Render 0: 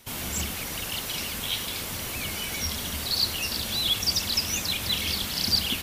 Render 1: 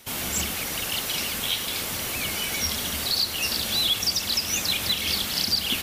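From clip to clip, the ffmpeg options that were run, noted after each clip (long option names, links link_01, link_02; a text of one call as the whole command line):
ffmpeg -i in.wav -af "lowshelf=frequency=160:gain=-7,bandreject=frequency=990:width=24,alimiter=limit=-17.5dB:level=0:latency=1:release=229,volume=4dB" out.wav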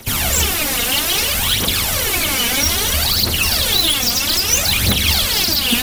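ffmpeg -i in.wav -filter_complex "[0:a]acrossover=split=110|900[link_01][link_02][link_03];[link_01]acontrast=30[link_04];[link_03]aeval=exprs='0.0794*(abs(mod(val(0)/0.0794+3,4)-2)-1)':channel_layout=same[link_05];[link_04][link_02][link_05]amix=inputs=3:normalize=0,aphaser=in_gain=1:out_gain=1:delay=4.3:decay=0.64:speed=0.61:type=triangular,volume=9dB" out.wav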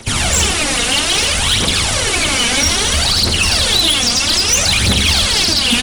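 ffmpeg -i in.wav -af "aecho=1:1:87:0.316,aresample=22050,aresample=44100,volume=11.5dB,asoftclip=hard,volume=-11.5dB,volume=3.5dB" out.wav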